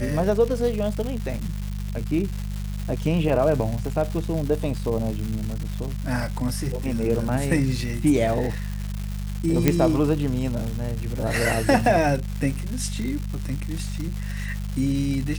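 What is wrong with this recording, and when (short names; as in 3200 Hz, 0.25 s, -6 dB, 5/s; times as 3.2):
crackle 360/s -29 dBFS
hum 50 Hz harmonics 4 -29 dBFS
9.68 pop -4 dBFS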